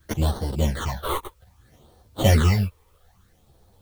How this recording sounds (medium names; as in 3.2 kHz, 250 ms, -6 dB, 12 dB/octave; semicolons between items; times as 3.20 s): aliases and images of a low sample rate 2.5 kHz, jitter 0%; phasing stages 8, 0.62 Hz, lowest notch 200–2400 Hz; a quantiser's noise floor 12-bit, dither triangular; a shimmering, thickened sound